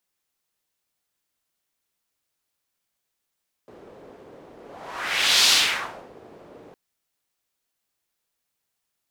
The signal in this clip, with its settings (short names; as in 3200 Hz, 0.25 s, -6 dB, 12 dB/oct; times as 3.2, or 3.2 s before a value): whoosh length 3.06 s, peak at 1.8, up 0.96 s, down 0.68 s, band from 440 Hz, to 4200 Hz, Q 1.7, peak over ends 29.5 dB